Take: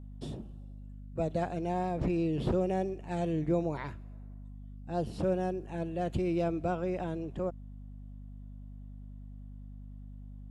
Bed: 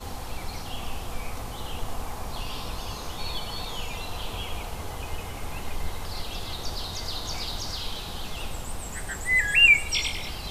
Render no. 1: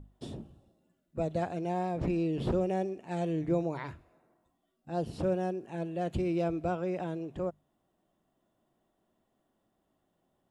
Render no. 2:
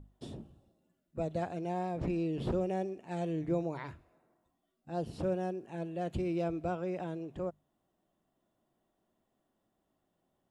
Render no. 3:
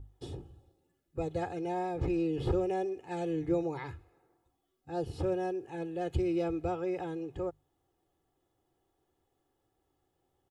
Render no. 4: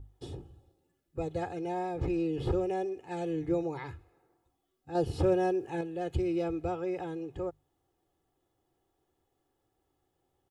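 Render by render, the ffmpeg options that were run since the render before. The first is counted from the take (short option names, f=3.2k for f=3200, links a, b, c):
-af "bandreject=f=50:t=h:w=6,bandreject=f=100:t=h:w=6,bandreject=f=150:t=h:w=6,bandreject=f=200:t=h:w=6,bandreject=f=250:t=h:w=6"
-af "volume=-3dB"
-af "equalizer=f=87:w=1.3:g=5.5,aecho=1:1:2.4:0.78"
-filter_complex "[0:a]asplit=3[a][b][c];[a]atrim=end=4.952[d];[b]atrim=start=4.948:end=5.812,asetpts=PTS-STARTPTS,volume=5.5dB[e];[c]atrim=start=5.808[f];[d][e]acrossfade=d=0.004:c1=hsin:c2=hsin[g];[g][f]acrossfade=d=0.004:c1=hsin:c2=hsin"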